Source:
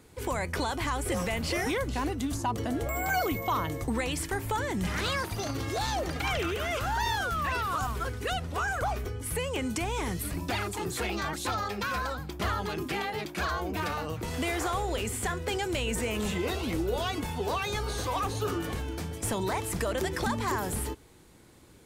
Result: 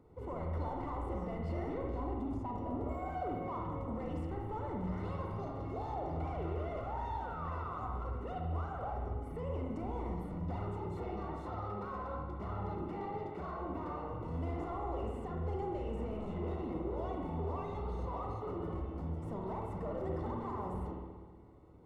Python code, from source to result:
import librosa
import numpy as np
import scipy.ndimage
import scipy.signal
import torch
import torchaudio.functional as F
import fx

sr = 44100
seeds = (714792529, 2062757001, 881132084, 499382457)

y = 10.0 ** (-32.5 / 20.0) * np.tanh(x / 10.0 ** (-32.5 / 20.0))
y = scipy.signal.savgol_filter(y, 65, 4, mode='constant')
y = fx.doubler(y, sr, ms=37.0, db=-12.5)
y = fx.rev_spring(y, sr, rt60_s=1.5, pass_ms=(49, 60), chirp_ms=20, drr_db=0.5)
y = y * 10.0 ** (-5.0 / 20.0)